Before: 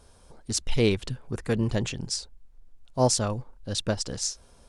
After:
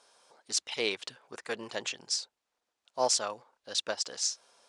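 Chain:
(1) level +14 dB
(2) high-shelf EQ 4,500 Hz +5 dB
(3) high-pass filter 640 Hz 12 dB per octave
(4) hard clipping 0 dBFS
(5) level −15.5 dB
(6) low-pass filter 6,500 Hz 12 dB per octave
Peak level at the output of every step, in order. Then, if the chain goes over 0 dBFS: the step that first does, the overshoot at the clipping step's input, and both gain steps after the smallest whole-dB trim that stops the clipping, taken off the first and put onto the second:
+5.5, +9.0, +8.5, 0.0, −15.5, −15.0 dBFS
step 1, 8.5 dB
step 1 +5 dB, step 5 −6.5 dB

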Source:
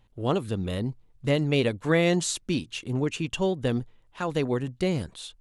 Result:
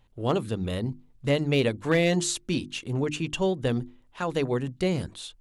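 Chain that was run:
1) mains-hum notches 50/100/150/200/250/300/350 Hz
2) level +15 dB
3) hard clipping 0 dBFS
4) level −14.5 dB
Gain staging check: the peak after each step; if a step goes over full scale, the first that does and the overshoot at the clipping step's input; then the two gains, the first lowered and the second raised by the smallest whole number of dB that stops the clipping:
−10.5, +4.5, 0.0, −14.5 dBFS
step 2, 4.5 dB
step 2 +10 dB, step 4 −9.5 dB

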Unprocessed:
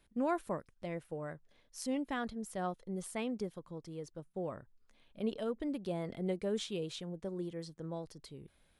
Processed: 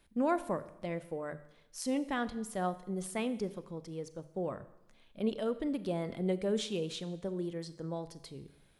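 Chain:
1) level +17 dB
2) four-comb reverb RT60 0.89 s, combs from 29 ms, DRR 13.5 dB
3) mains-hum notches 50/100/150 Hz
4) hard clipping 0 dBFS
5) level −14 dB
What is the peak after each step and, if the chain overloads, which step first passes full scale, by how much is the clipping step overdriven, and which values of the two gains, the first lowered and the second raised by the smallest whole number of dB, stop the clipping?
−6.0, −4.5, −4.5, −4.5, −18.5 dBFS
no step passes full scale

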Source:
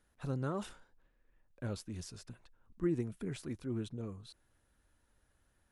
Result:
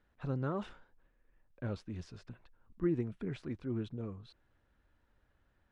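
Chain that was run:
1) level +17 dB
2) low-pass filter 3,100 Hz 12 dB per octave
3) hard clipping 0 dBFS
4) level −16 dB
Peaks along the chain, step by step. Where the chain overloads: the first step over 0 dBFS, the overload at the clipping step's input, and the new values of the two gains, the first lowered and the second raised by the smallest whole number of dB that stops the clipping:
−5.5, −5.5, −5.5, −21.5 dBFS
no step passes full scale

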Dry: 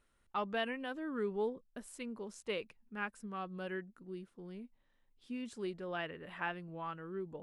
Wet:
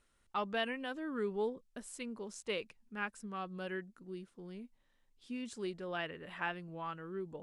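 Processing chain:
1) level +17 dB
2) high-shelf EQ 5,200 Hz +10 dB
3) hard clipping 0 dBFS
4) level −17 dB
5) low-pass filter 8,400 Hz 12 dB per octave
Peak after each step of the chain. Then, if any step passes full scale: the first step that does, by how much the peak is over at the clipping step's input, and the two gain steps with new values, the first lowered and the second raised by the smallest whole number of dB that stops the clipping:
−6.5, −5.5, −5.5, −22.5, −22.5 dBFS
no step passes full scale

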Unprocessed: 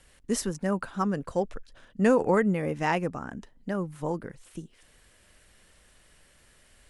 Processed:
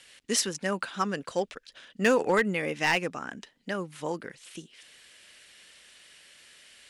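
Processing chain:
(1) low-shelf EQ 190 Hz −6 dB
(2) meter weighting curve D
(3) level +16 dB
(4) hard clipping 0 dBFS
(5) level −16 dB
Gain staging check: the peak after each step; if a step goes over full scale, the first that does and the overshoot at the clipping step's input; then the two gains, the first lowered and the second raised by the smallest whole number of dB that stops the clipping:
−11.0, −8.0, +8.0, 0.0, −16.0 dBFS
step 3, 8.0 dB
step 3 +8 dB, step 5 −8 dB

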